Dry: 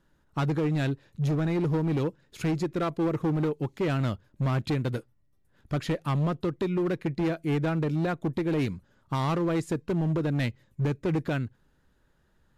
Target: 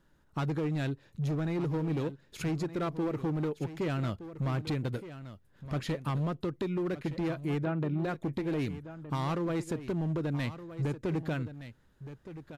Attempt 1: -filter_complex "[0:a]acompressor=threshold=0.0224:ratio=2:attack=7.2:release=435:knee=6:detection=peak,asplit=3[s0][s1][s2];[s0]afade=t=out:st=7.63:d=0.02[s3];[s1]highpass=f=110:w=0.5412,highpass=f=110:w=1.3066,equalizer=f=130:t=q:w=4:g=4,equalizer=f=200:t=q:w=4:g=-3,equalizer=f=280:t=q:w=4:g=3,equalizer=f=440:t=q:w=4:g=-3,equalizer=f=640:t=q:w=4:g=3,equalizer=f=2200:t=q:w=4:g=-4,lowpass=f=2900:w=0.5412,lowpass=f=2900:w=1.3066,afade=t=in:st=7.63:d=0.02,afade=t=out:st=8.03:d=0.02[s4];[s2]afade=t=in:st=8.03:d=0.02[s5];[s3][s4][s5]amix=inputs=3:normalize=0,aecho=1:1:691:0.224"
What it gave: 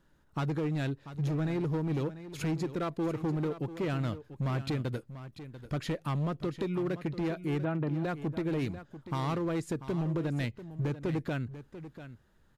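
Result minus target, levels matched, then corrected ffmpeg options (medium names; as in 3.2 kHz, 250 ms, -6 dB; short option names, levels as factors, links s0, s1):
echo 527 ms early
-filter_complex "[0:a]acompressor=threshold=0.0224:ratio=2:attack=7.2:release=435:knee=6:detection=peak,asplit=3[s0][s1][s2];[s0]afade=t=out:st=7.63:d=0.02[s3];[s1]highpass=f=110:w=0.5412,highpass=f=110:w=1.3066,equalizer=f=130:t=q:w=4:g=4,equalizer=f=200:t=q:w=4:g=-3,equalizer=f=280:t=q:w=4:g=3,equalizer=f=440:t=q:w=4:g=-3,equalizer=f=640:t=q:w=4:g=3,equalizer=f=2200:t=q:w=4:g=-4,lowpass=f=2900:w=0.5412,lowpass=f=2900:w=1.3066,afade=t=in:st=7.63:d=0.02,afade=t=out:st=8.03:d=0.02[s4];[s2]afade=t=in:st=8.03:d=0.02[s5];[s3][s4][s5]amix=inputs=3:normalize=0,aecho=1:1:1218:0.224"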